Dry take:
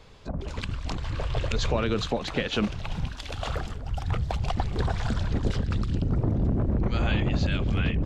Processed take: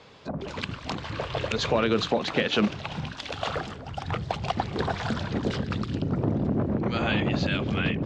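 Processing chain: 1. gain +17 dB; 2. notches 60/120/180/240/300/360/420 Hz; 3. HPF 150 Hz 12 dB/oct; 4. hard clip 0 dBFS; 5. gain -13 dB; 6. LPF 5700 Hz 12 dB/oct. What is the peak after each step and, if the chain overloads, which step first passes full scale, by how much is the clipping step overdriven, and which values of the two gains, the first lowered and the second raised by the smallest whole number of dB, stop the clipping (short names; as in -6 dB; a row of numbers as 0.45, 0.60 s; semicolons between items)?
+5.0, +5.0, +5.0, 0.0, -13.0, -12.5 dBFS; step 1, 5.0 dB; step 1 +12 dB, step 5 -8 dB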